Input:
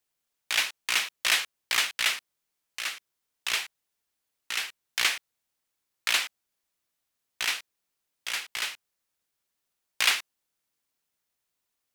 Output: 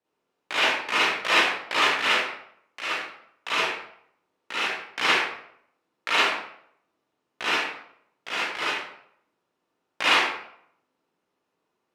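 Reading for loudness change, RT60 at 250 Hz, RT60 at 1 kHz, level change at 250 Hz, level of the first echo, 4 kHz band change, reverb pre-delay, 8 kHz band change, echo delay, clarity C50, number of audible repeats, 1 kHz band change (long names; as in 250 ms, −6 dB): +4.0 dB, 0.65 s, 0.65 s, +17.5 dB, no echo audible, +2.0 dB, 36 ms, −6.5 dB, no echo audible, −3.0 dB, no echo audible, +12.5 dB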